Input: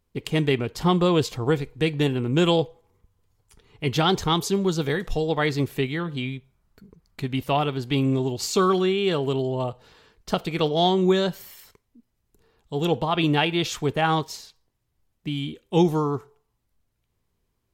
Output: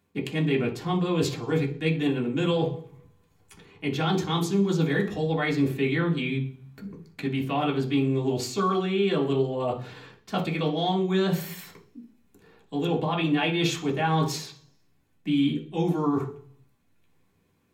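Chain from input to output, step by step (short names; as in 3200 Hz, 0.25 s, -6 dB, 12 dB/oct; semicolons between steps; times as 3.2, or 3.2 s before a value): reverse; compressor 6:1, threshold -32 dBFS, peak gain reduction 16.5 dB; reverse; reverb RT60 0.45 s, pre-delay 3 ms, DRR -2.5 dB; gain +3 dB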